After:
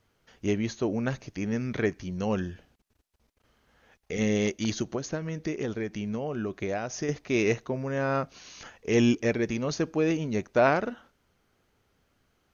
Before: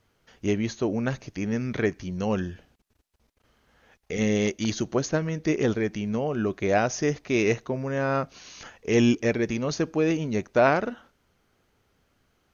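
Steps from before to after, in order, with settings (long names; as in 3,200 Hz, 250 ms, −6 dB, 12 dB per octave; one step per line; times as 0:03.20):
0:04.82–0:07.09: downward compressor, threshold −26 dBFS, peak gain reduction 9 dB
level −2 dB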